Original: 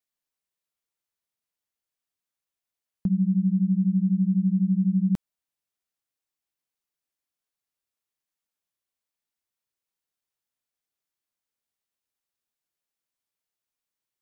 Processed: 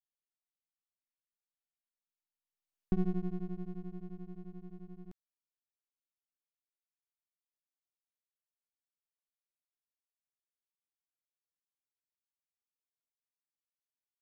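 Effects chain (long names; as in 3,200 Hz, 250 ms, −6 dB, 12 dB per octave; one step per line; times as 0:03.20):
source passing by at 0:02.85, 16 m/s, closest 2.6 metres
half-wave rectification
level −1 dB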